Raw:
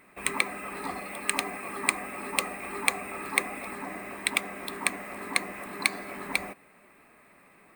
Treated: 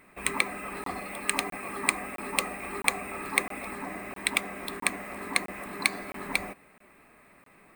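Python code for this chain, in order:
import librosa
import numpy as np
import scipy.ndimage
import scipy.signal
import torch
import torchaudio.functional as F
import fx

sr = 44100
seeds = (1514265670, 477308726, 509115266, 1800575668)

y = fx.low_shelf(x, sr, hz=93.0, db=7.5)
y = fx.buffer_crackle(y, sr, first_s=0.84, period_s=0.66, block=1024, kind='zero')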